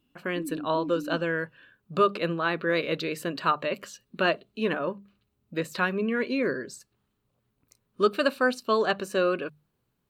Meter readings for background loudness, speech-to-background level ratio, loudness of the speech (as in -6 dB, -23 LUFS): -38.5 LUFS, 10.5 dB, -28.0 LUFS